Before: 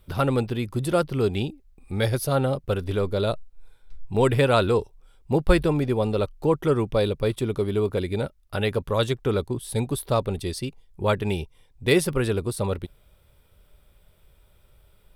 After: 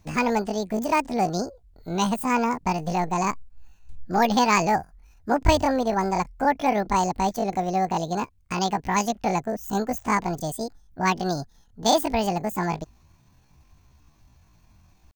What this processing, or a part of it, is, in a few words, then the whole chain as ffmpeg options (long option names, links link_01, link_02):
chipmunk voice: -af "asetrate=78577,aresample=44100,atempo=0.561231"